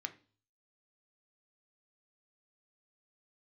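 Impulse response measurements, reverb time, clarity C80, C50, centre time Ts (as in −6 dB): 0.40 s, 21.5 dB, 16.0 dB, 5 ms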